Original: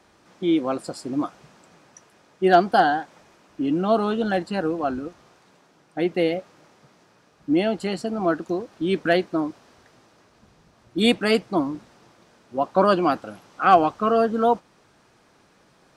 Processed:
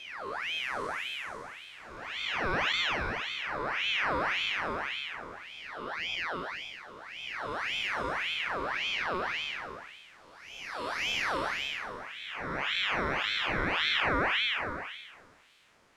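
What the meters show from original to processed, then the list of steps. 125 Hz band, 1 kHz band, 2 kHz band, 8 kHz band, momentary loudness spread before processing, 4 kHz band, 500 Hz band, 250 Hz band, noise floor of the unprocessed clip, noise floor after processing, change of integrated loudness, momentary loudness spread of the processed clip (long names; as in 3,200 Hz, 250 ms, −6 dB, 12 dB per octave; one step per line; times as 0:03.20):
−10.5 dB, −11.0 dB, +1.5 dB, −3.0 dB, 13 LU, +2.5 dB, −16.0 dB, −19.5 dB, −59 dBFS, −56 dBFS, −8.5 dB, 15 LU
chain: spectrum smeared in time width 758 ms
ring modulator whose carrier an LFO sweeps 1,800 Hz, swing 60%, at 1.8 Hz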